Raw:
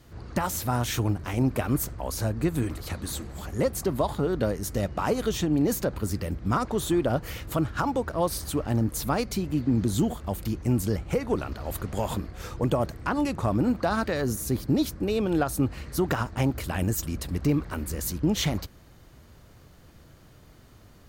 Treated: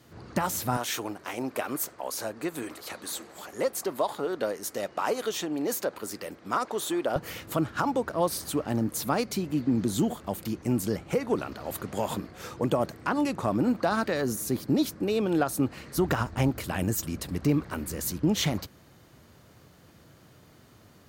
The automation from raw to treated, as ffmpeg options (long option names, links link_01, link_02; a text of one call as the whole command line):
ffmpeg -i in.wav -af "asetnsamples=nb_out_samples=441:pad=0,asendcmd='0.77 highpass f 410;7.16 highpass f 160;15.97 highpass f 52;16.48 highpass f 110',highpass=130" out.wav